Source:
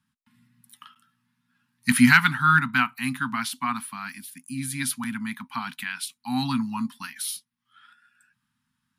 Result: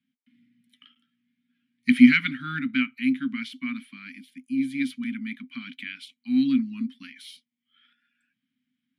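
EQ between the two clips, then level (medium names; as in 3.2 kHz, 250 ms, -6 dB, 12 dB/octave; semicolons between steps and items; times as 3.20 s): vowel filter i; band-stop 650 Hz, Q 12; +8.5 dB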